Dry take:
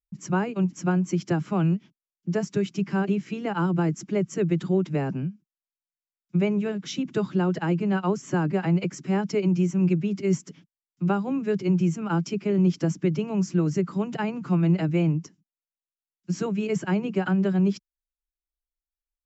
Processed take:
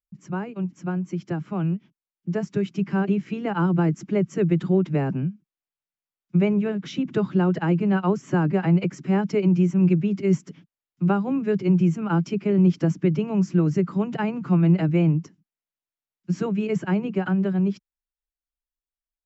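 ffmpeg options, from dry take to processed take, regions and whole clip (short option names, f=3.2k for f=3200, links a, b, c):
-filter_complex "[0:a]asettb=1/sr,asplit=3[a][b][c];[a]atrim=end=6.534[d];[b]atrim=start=6.53:end=7.31,asetpts=PTS-STARTPTS,afade=t=in:d=0.004:c=qsin,afade=t=out:st=0.776:d=0.004:c=qsin,highshelf=f=5.3k:g=-4.5,acompressor=mode=upward:threshold=-32dB:ratio=2.5:attack=3.2:release=140:knee=2.83:detection=peak[e];[c]atrim=start=7.306[f];[d][e]acrossfade=d=0.004:c1=hsin:c2=qsin[g];[g][f]acrossfade=d=0.004:c1=qsin:c2=hsin,bass=f=250:g=2,treble=f=4k:g=-9,dynaudnorm=f=360:g=13:m=8dB,volume=-5.5dB"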